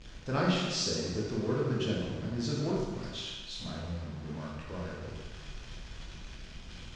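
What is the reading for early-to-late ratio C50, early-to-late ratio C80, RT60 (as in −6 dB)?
0.0 dB, 2.5 dB, 1.3 s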